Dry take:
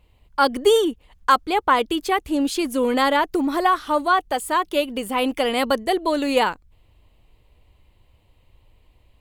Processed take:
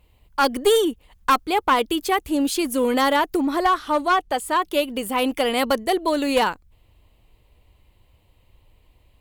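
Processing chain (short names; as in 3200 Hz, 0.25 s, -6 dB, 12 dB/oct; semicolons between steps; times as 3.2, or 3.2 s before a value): high shelf 11000 Hz +11 dB, from 3.37 s -3 dB, from 4.62 s +7.5 dB; one-sided clip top -14.5 dBFS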